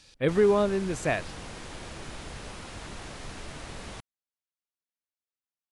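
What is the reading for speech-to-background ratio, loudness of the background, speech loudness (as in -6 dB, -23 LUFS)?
16.0 dB, -41.5 LUFS, -25.5 LUFS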